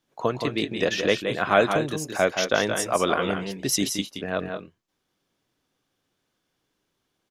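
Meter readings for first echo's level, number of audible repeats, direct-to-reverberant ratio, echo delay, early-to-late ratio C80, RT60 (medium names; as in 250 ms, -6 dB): -7.0 dB, 1, no reverb, 173 ms, no reverb, no reverb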